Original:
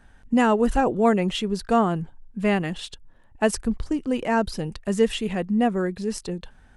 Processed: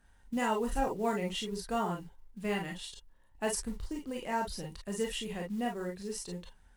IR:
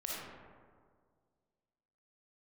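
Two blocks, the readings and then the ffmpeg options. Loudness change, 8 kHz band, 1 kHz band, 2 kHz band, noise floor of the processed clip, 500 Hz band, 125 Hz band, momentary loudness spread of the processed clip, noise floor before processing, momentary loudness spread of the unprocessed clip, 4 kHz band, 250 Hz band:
-12.0 dB, -4.0 dB, -10.0 dB, -10.0 dB, -63 dBFS, -12.0 dB, -12.5 dB, 10 LU, -53 dBFS, 11 LU, -7.5 dB, -13.5 dB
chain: -filter_complex "[0:a]aemphasis=mode=production:type=cd,acrusher=bits=7:mode=log:mix=0:aa=0.000001[s0];[1:a]atrim=start_sample=2205,afade=t=out:st=0.13:d=0.01,atrim=end_sample=6174,asetrate=66150,aresample=44100[s1];[s0][s1]afir=irnorm=-1:irlink=0,volume=0.501"

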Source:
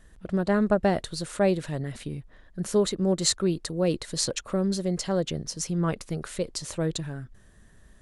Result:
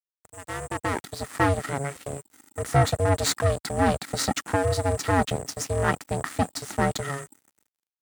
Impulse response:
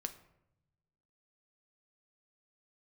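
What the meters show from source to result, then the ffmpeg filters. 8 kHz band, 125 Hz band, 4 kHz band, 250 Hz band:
+0.5 dB, +4.0 dB, -1.0 dB, -3.5 dB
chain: -filter_complex "[0:a]aeval=exprs='(tanh(15.8*val(0)+0.4)-tanh(0.4))/15.8':c=same,equalizer=f=1600:t=o:w=0.21:g=14,acrossover=split=200|2400[s0][s1][s2];[s0]acompressor=threshold=0.00562:ratio=6[s3];[s2]flanger=delay=4.9:depth=3:regen=-55:speed=0.54:shape=sinusoidal[s4];[s3][s1][s4]amix=inputs=3:normalize=0,dynaudnorm=f=370:g=5:m=6.31,aeval=exprs='val(0)*sin(2*PI*280*n/s)':c=same,adynamicequalizer=threshold=0.0224:dfrequency=140:dqfactor=0.9:tfrequency=140:tqfactor=0.9:attack=5:release=100:ratio=0.375:range=2:mode=boostabove:tftype=bell,aeval=exprs='val(0)+0.02*sin(2*PI*8100*n/s)':c=same,aeval=exprs='sgn(val(0))*max(abs(val(0))-0.0282,0)':c=same,highpass=70,volume=0.708"

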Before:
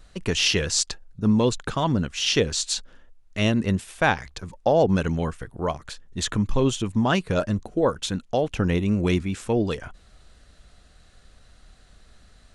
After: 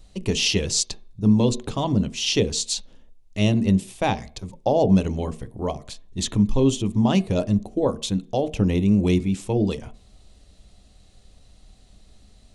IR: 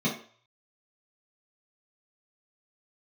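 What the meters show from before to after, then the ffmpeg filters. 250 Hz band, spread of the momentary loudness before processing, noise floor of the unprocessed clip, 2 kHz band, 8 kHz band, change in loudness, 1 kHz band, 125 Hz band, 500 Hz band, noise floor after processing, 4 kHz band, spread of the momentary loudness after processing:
+3.5 dB, 9 LU, -55 dBFS, -5.5 dB, +0.5 dB, +1.5 dB, -2.0 dB, +2.5 dB, 0.0 dB, -53 dBFS, -0.5 dB, 11 LU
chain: -filter_complex "[0:a]equalizer=f=1500:t=o:w=0.78:g=-14.5,asplit=2[s0][s1];[1:a]atrim=start_sample=2205,lowpass=2900[s2];[s1][s2]afir=irnorm=-1:irlink=0,volume=0.0794[s3];[s0][s3]amix=inputs=2:normalize=0,volume=1.12"

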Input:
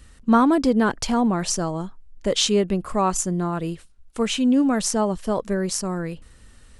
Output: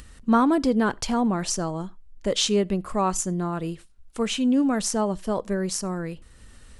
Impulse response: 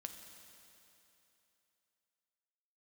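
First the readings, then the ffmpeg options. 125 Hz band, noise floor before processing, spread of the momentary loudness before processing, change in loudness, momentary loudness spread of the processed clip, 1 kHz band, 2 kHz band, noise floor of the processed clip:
-2.5 dB, -50 dBFS, 14 LU, -2.5 dB, 14 LU, -2.5 dB, -2.5 dB, -50 dBFS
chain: -filter_complex "[0:a]acompressor=mode=upward:threshold=0.0141:ratio=2.5,asplit=2[s0][s1];[1:a]atrim=start_sample=2205,atrim=end_sample=4410[s2];[s1][s2]afir=irnorm=-1:irlink=0,volume=0.316[s3];[s0][s3]amix=inputs=2:normalize=0,volume=0.631"

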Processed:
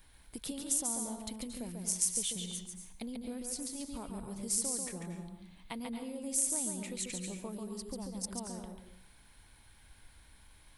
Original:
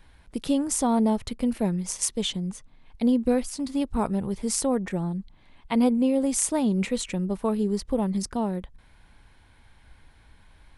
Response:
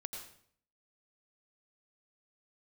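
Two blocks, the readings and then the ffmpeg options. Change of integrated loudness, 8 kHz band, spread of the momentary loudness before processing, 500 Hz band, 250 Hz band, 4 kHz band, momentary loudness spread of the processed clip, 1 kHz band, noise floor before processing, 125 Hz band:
-10.0 dB, -2.0 dB, 8 LU, -17.5 dB, -17.0 dB, -8.0 dB, 15 LU, -17.0 dB, -56 dBFS, -15.0 dB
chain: -filter_complex "[0:a]acompressor=threshold=0.0224:ratio=6,aemphasis=mode=production:type=75fm,asplit=2[s0][s1];[1:a]atrim=start_sample=2205,adelay=141[s2];[s1][s2]afir=irnorm=-1:irlink=0,volume=0.944[s3];[s0][s3]amix=inputs=2:normalize=0,volume=0.422"

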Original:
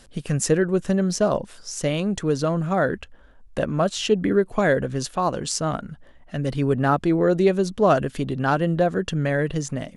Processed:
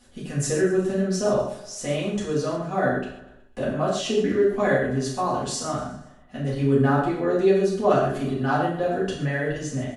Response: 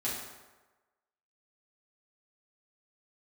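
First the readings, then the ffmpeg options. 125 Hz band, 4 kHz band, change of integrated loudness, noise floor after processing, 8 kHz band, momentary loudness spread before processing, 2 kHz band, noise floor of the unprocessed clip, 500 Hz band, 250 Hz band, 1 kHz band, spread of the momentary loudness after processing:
-2.5 dB, -2.5 dB, -1.5 dB, -50 dBFS, -2.5 dB, 8 LU, -1.0 dB, -49 dBFS, -0.5 dB, -2.0 dB, -1.0 dB, 11 LU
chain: -filter_complex "[0:a]aecho=1:1:123|246|369|492:0.168|0.0772|0.0355|0.0163[s0];[1:a]atrim=start_sample=2205,afade=t=out:st=0.21:d=0.01,atrim=end_sample=9702[s1];[s0][s1]afir=irnorm=-1:irlink=0,volume=0.473"

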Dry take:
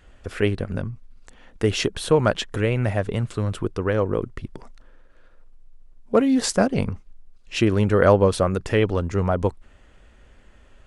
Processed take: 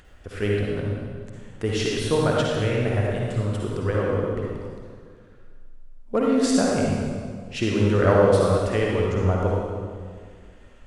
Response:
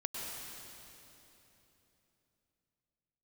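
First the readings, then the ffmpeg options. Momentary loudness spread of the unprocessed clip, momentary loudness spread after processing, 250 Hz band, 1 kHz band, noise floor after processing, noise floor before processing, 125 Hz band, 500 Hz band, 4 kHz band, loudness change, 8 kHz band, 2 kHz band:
13 LU, 16 LU, -0.5 dB, -1.0 dB, -48 dBFS, -53 dBFS, 0.0 dB, -0.5 dB, -1.5 dB, -1.0 dB, -1.5 dB, -1.0 dB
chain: -filter_complex "[0:a]acompressor=mode=upward:threshold=0.00891:ratio=2.5[s0];[1:a]atrim=start_sample=2205,asetrate=88200,aresample=44100[s1];[s0][s1]afir=irnorm=-1:irlink=0,volume=1.33"

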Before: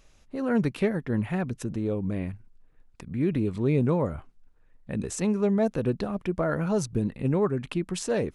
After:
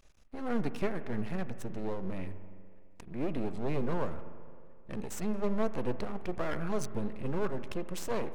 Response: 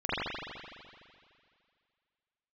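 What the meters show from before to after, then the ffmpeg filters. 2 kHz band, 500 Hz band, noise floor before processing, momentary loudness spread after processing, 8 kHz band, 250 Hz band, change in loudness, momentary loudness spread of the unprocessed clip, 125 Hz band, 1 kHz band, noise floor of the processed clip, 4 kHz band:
-6.0 dB, -8.0 dB, -59 dBFS, 12 LU, -8.5 dB, -9.5 dB, -9.0 dB, 9 LU, -11.0 dB, -3.5 dB, -49 dBFS, -6.5 dB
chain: -filter_complex "[0:a]aeval=exprs='max(val(0),0)':c=same,asplit=2[s0][s1];[1:a]atrim=start_sample=2205,lowpass=2500[s2];[s1][s2]afir=irnorm=-1:irlink=0,volume=0.0708[s3];[s0][s3]amix=inputs=2:normalize=0,volume=0.668"

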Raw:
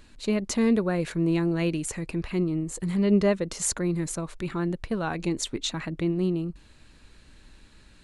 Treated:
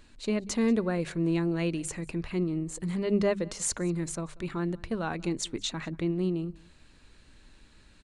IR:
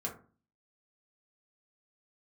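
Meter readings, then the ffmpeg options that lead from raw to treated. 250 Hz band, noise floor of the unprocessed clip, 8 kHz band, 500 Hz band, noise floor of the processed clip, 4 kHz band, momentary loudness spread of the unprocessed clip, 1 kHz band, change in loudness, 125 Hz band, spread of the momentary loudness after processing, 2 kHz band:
-3.5 dB, -54 dBFS, -3.0 dB, -3.0 dB, -57 dBFS, -3.0 dB, 8 LU, -3.0 dB, -3.5 dB, -3.5 dB, 8 LU, -3.0 dB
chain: -filter_complex "[0:a]bandreject=f=50:t=h:w=6,bandreject=f=100:t=h:w=6,bandreject=f=150:t=h:w=6,bandreject=f=200:t=h:w=6,asplit=2[s0][s1];[s1]aecho=0:1:187:0.0631[s2];[s0][s2]amix=inputs=2:normalize=0,aresample=22050,aresample=44100,volume=0.708"

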